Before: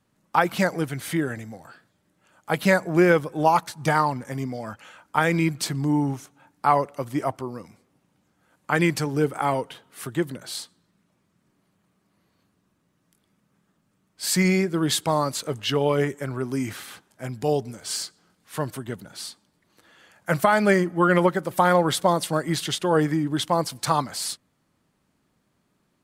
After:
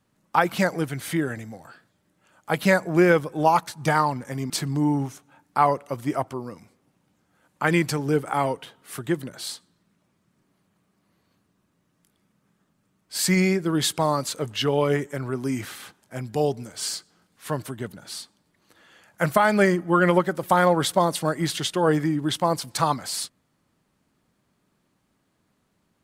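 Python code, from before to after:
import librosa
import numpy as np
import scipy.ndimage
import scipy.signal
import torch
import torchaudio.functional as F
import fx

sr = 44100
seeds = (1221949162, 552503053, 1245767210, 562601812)

y = fx.edit(x, sr, fx.cut(start_s=4.5, length_s=1.08), tone=tone)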